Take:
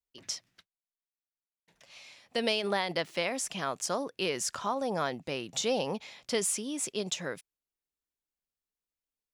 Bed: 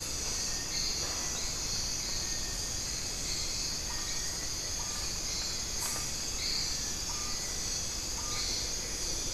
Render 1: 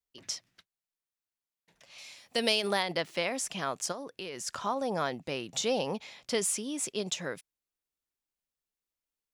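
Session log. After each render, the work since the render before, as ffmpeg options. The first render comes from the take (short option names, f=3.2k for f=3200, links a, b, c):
-filter_complex "[0:a]asettb=1/sr,asplit=3[a][b][c];[a]atrim=end=1.984[d];[b]atrim=start=1.98:end=2.83,asetpts=PTS-STARTPTS,afade=t=in:d=0.004:c=qsin,afade=t=out:st=0.846:d=0.004:c=qsin,highshelf=f=5.1k:g=11[e];[c]atrim=start=2.826[f];[d][e]acrossfade=d=0.004:c1=hsin:c2=qsin[g];[g][f]acrossfade=d=0.004:c1=qsin:c2=hsin,asplit=3[h][i][j];[h]afade=t=out:st=3.91:d=0.02[k];[i]acompressor=threshold=-37dB:ratio=4:attack=3.2:release=140:knee=1:detection=peak,afade=t=in:st=3.91:d=0.02,afade=t=out:st=4.46:d=0.02[l];[j]afade=t=in:st=4.46:d=0.02[m];[k][l][m]amix=inputs=3:normalize=0"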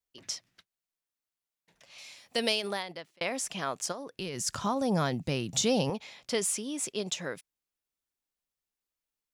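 -filter_complex "[0:a]asettb=1/sr,asplit=3[a][b][c];[a]atrim=end=4.194[d];[b]atrim=start=4.19:end=5.9,asetpts=PTS-STARTPTS,afade=t=in:d=0.004:c=qsin,afade=t=out:st=1.706:d=0.004:c=qsin,bass=f=250:g=14,treble=f=4k:g=6[e];[c]atrim=start=5.896[f];[d][e]acrossfade=d=0.004:c1=hsin:c2=qsin[g];[g][f]acrossfade=d=0.004:c1=qsin:c2=hsin,asplit=2[h][i];[h]atrim=end=3.21,asetpts=PTS-STARTPTS,afade=t=out:st=2.4:d=0.81[j];[i]atrim=start=3.21,asetpts=PTS-STARTPTS,afade=t=in:d=0.004:c=hsin[k];[j][k]concat=n=2:v=0:a=1"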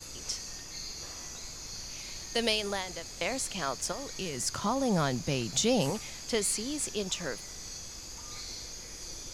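-filter_complex "[1:a]volume=-8dB[a];[0:a][a]amix=inputs=2:normalize=0"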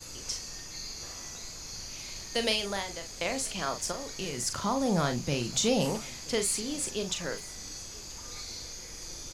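-filter_complex "[0:a]asplit=2[a][b];[b]adelay=41,volume=-8dB[c];[a][c]amix=inputs=2:normalize=0,aecho=1:1:980:0.075"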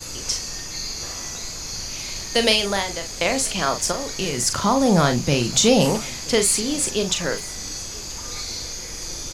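-af "volume=10.5dB"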